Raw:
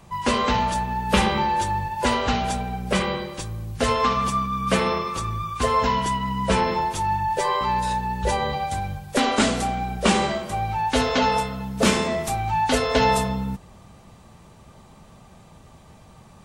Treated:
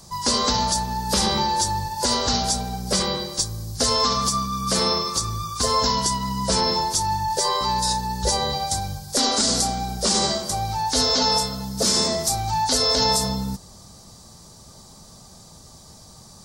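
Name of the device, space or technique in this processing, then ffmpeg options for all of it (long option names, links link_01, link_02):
over-bright horn tweeter: -af "highshelf=frequency=3600:width_type=q:width=3:gain=11,alimiter=limit=-10dB:level=0:latency=1:release=54"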